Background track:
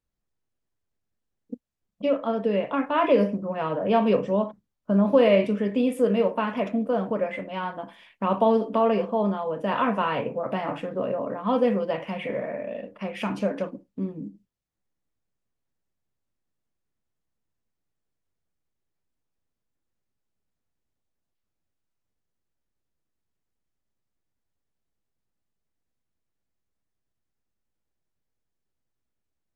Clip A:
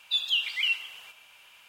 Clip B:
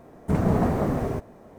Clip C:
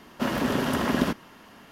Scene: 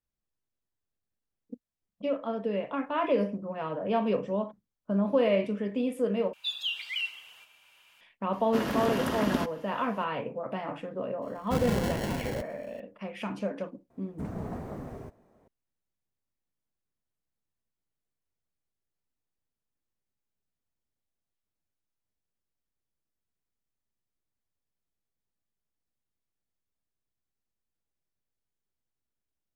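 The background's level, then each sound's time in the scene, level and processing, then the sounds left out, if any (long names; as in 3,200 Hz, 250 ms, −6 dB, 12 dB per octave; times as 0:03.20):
background track −6.5 dB
0:06.33: overwrite with A −6 dB
0:08.33: mix in C −4.5 dB
0:11.22: mix in B −8 dB + decimation without filtering 36×
0:13.90: mix in B −15 dB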